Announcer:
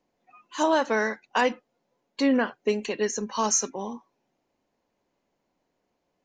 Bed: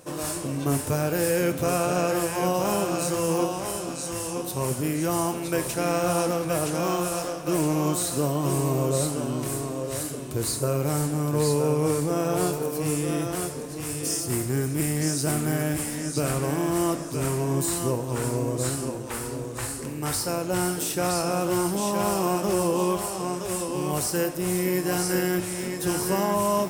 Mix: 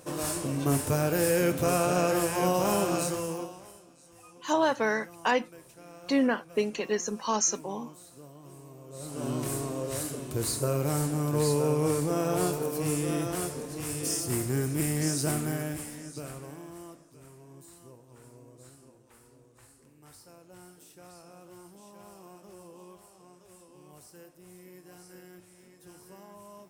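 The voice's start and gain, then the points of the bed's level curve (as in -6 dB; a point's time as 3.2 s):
3.90 s, -2.5 dB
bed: 2.98 s -1.5 dB
3.9 s -24.5 dB
8.86 s -24.5 dB
9.27 s -3 dB
15.26 s -3 dB
17.21 s -26 dB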